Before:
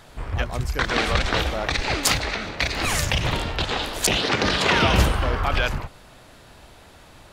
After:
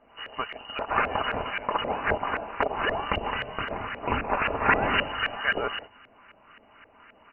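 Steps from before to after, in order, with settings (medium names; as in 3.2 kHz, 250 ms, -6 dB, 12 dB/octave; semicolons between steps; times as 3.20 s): comb 5.3 ms, depth 32%; frequency inversion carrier 2.9 kHz; LFO low-pass saw up 3.8 Hz 550–1700 Hz; echo from a far wall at 31 m, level -28 dB; trim -3 dB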